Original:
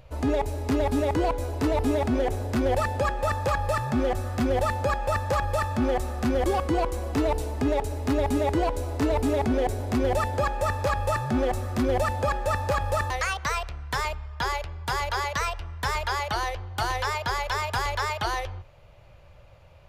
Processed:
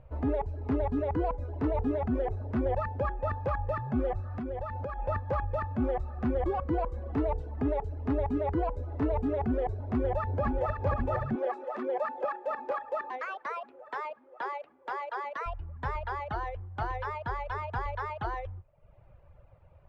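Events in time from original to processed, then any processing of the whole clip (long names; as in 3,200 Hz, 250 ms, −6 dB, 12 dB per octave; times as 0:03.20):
0:04.20–0:04.99: downward compressor, threshold −26 dBFS
0:09.74–0:10.78: delay throw 530 ms, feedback 70%, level −3.5 dB
0:11.35–0:15.46: high-pass filter 320 Hz 24 dB per octave
whole clip: reverb reduction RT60 0.74 s; low-pass filter 1,500 Hz 12 dB per octave; low-shelf EQ 170 Hz +3.5 dB; level −5 dB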